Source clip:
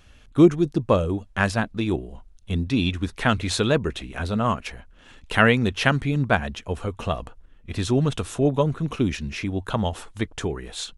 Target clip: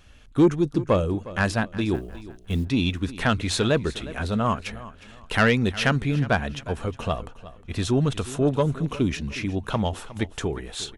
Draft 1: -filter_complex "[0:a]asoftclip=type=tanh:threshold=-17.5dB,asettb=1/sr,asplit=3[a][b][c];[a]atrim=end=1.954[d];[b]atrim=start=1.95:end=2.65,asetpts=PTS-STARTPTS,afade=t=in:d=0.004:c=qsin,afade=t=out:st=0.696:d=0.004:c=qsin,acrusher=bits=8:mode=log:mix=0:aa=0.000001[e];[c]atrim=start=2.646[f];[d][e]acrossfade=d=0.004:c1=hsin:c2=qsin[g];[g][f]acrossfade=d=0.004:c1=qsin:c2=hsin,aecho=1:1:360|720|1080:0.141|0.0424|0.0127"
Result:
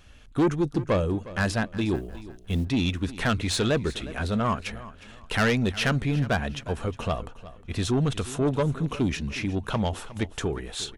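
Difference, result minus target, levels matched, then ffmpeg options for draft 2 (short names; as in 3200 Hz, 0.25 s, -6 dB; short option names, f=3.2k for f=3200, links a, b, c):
soft clip: distortion +7 dB
-filter_complex "[0:a]asoftclip=type=tanh:threshold=-10dB,asettb=1/sr,asplit=3[a][b][c];[a]atrim=end=1.954[d];[b]atrim=start=1.95:end=2.65,asetpts=PTS-STARTPTS,afade=t=in:d=0.004:c=qsin,afade=t=out:st=0.696:d=0.004:c=qsin,acrusher=bits=8:mode=log:mix=0:aa=0.000001[e];[c]atrim=start=2.646[f];[d][e]acrossfade=d=0.004:c1=hsin:c2=qsin[g];[g][f]acrossfade=d=0.004:c1=qsin:c2=hsin,aecho=1:1:360|720|1080:0.141|0.0424|0.0127"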